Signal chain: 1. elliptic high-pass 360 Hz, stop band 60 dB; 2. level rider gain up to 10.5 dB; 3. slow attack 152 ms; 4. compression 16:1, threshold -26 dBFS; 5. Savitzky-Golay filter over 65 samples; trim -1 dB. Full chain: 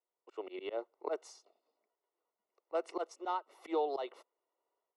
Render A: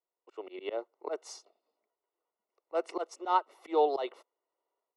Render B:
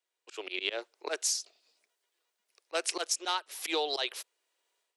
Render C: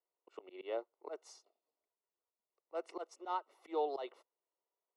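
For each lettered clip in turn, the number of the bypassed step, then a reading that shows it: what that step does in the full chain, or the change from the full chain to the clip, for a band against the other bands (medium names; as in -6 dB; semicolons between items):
4, mean gain reduction 3.5 dB; 5, 8 kHz band +25.5 dB; 2, momentary loudness spread change +8 LU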